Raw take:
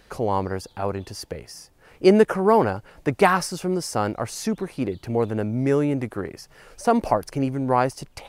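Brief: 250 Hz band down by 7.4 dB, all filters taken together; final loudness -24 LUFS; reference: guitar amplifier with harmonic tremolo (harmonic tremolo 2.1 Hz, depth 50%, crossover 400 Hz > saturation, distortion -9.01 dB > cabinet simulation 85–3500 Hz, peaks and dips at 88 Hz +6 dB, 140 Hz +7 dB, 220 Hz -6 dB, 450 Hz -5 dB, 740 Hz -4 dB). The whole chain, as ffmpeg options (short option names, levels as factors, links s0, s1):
-filter_complex "[0:a]equalizer=f=250:t=o:g=-7.5,acrossover=split=400[s0][s1];[s0]aeval=exprs='val(0)*(1-0.5/2+0.5/2*cos(2*PI*2.1*n/s))':c=same[s2];[s1]aeval=exprs='val(0)*(1-0.5/2-0.5/2*cos(2*PI*2.1*n/s))':c=same[s3];[s2][s3]amix=inputs=2:normalize=0,asoftclip=threshold=0.1,highpass=85,equalizer=f=88:t=q:w=4:g=6,equalizer=f=140:t=q:w=4:g=7,equalizer=f=220:t=q:w=4:g=-6,equalizer=f=450:t=q:w=4:g=-5,equalizer=f=740:t=q:w=4:g=-4,lowpass=f=3500:w=0.5412,lowpass=f=3500:w=1.3066,volume=2.66"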